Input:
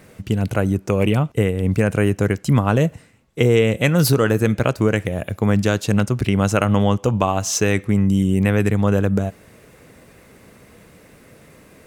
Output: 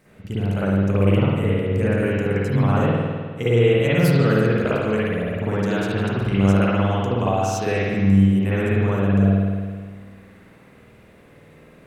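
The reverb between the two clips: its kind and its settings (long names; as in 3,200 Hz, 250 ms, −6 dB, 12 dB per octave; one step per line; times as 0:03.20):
spring reverb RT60 1.7 s, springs 51 ms, chirp 25 ms, DRR −10 dB
level −12 dB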